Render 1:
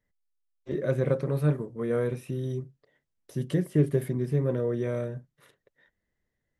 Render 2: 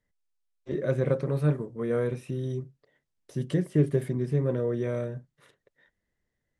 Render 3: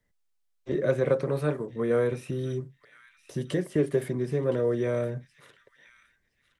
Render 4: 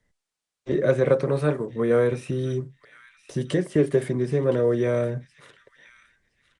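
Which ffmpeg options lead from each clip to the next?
-af "lowpass=f=10000:w=0.5412,lowpass=f=10000:w=1.3066"
-filter_complex "[0:a]acrossover=split=320|940|1500[s0][s1][s2][s3];[s0]acompressor=threshold=0.0178:ratio=6[s4];[s3]asplit=2[s5][s6];[s6]adelay=1017,lowpass=f=3500:p=1,volume=0.355,asplit=2[s7][s8];[s8]adelay=1017,lowpass=f=3500:p=1,volume=0.29,asplit=2[s9][s10];[s10]adelay=1017,lowpass=f=3500:p=1,volume=0.29[s11];[s5][s7][s9][s11]amix=inputs=4:normalize=0[s12];[s4][s1][s2][s12]amix=inputs=4:normalize=0,volume=1.58"
-af "aresample=22050,aresample=44100,volume=1.68" -ar 48000 -c:a libopus -b:a 256k

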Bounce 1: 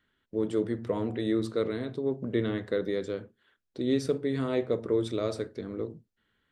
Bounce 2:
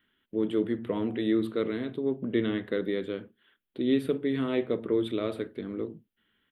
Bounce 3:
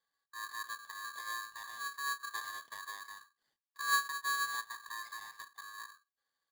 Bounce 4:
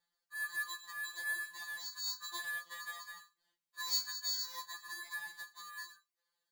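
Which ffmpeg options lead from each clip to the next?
-af "firequalizer=gain_entry='entry(120,0);entry(200,7);entry(330,7);entry(500,2);entry(3200,11);entry(5500,-20);entry(11000,8)':delay=0.05:min_phase=1,volume=0.596"
-filter_complex "[0:a]asplit=3[s0][s1][s2];[s0]bandpass=f=270:t=q:w=8,volume=1[s3];[s1]bandpass=f=2290:t=q:w=8,volume=0.501[s4];[s2]bandpass=f=3010:t=q:w=8,volume=0.355[s5];[s3][s4][s5]amix=inputs=3:normalize=0,aeval=exprs='val(0)*sgn(sin(2*PI*1400*n/s))':c=same,volume=0.631"
-af "afftfilt=real='re*2.83*eq(mod(b,8),0)':imag='im*2.83*eq(mod(b,8),0)':win_size=2048:overlap=0.75,volume=1.5"

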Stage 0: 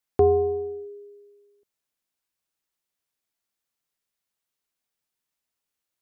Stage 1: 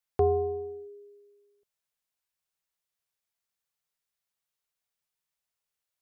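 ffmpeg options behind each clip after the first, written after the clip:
-af "equalizer=f=280:t=o:w=0.63:g=-12,volume=0.708"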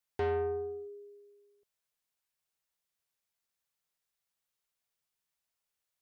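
-af "asoftclip=type=tanh:threshold=0.0376"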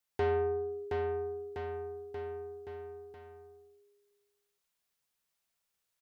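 -af "aecho=1:1:720|1368|1951|2476|2948:0.631|0.398|0.251|0.158|0.1,volume=1.19"

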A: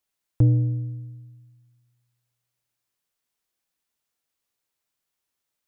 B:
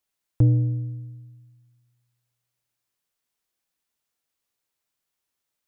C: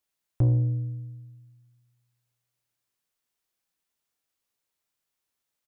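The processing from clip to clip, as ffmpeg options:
-af anull
-filter_complex "[0:a]asoftclip=type=tanh:threshold=0.2,asplit=2[s0][s1];[s1]adelay=31,volume=0.224[s2];[s0][s2]amix=inputs=2:normalize=0,aecho=1:1:84:0.0668,volume=0.841"

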